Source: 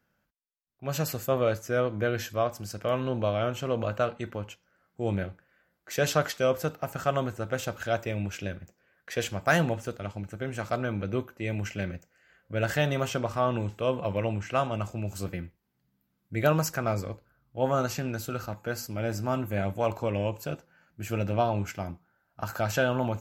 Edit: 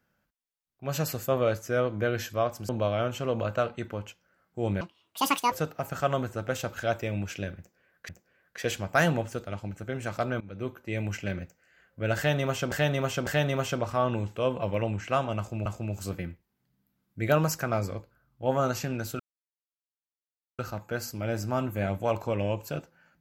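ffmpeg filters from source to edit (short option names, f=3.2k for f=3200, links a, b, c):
-filter_complex "[0:a]asplit=10[a][b][c][d][e][f][g][h][i][j];[a]atrim=end=2.692[k];[b]atrim=start=3.108:end=5.234[l];[c]atrim=start=5.23:end=6.55,asetpts=PTS-STARTPTS,asetrate=82467,aresample=44100,atrim=end_sample=31129,asetpts=PTS-STARTPTS[m];[d]atrim=start=6.546:end=9.122[n];[e]atrim=start=8.608:end=10.93,asetpts=PTS-STARTPTS,afade=t=out:st=2.318:d=0.004:c=hsin:silence=0.105925[o];[f]atrim=start=10.93:end=13.242,asetpts=PTS-STARTPTS,afade=t=in:d=0.42:silence=0.105925[p];[g]atrim=start=12.688:end=13.242[q];[h]atrim=start=12.688:end=15.082[r];[i]atrim=start=14.798:end=18.34,asetpts=PTS-STARTPTS,afade=t=out:st=3.538:d=0.004:c=hsin,apad=pad_dur=1.39[s];[j]atrim=start=18.34,asetpts=PTS-STARTPTS,afade=t=in:d=0.004:c=hsin[t];[k][l]acrossfade=d=0.004:c1=hsin:c2=hsin[u];[u][m]acrossfade=d=0.004:c1=hsin:c2=hsin[v];[v][n]acrossfade=d=0.004:c1=hsin:c2=hsin[w];[o][p]concat=n=2:v=0:a=1[x];[w][x]acrossfade=d=0.004:c1=hsin:c2=hsin[y];[y][q]acrossfade=d=0.004:c1=hsin:c2=hsin[z];[z][r]acrossfade=d=0.004:c1=hsin:c2=hsin[aa];[s][t]concat=n=2:v=0:a=1[ab];[aa][ab]acrossfade=d=0.004:c1=hsin:c2=hsin"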